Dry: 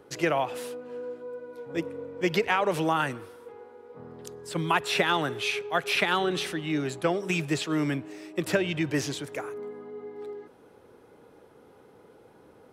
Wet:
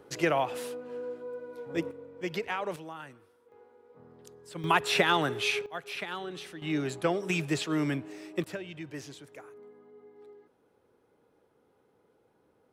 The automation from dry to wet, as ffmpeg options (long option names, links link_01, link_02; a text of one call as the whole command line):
ffmpeg -i in.wav -af "asetnsamples=nb_out_samples=441:pad=0,asendcmd='1.91 volume volume -8.5dB;2.76 volume volume -17.5dB;3.52 volume volume -10dB;4.64 volume volume 0dB;5.66 volume volume -12dB;6.62 volume volume -2dB;8.44 volume volume -13.5dB',volume=-1dB" out.wav